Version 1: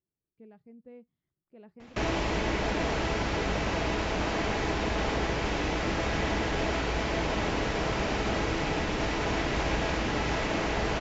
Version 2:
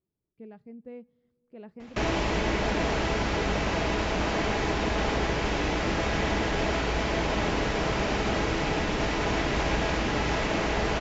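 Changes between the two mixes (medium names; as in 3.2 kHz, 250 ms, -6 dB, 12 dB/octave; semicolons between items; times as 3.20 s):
speech +6.0 dB; reverb: on, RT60 2.3 s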